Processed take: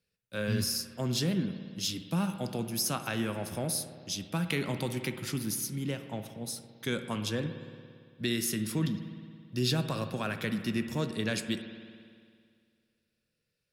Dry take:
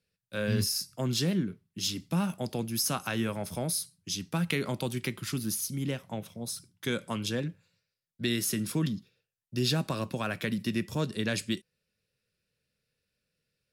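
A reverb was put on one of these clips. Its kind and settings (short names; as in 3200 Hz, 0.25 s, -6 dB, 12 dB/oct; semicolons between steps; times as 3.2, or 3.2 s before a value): spring tank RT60 2.1 s, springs 56 ms, chirp 75 ms, DRR 8.5 dB; gain -1.5 dB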